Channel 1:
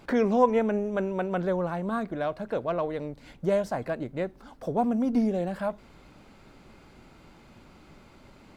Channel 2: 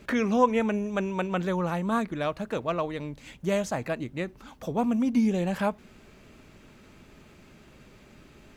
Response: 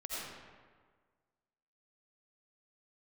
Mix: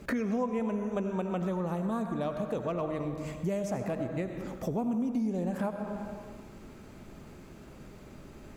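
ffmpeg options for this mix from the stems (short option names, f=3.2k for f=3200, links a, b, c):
-filter_complex "[0:a]volume=-7.5dB[a];[1:a]equalizer=f=2.9k:t=o:w=1.9:g=-9,volume=1.5dB,asplit=2[b][c];[c]volume=-6dB[d];[2:a]atrim=start_sample=2205[e];[d][e]afir=irnorm=-1:irlink=0[f];[a][b][f]amix=inputs=3:normalize=0,acompressor=threshold=-30dB:ratio=4"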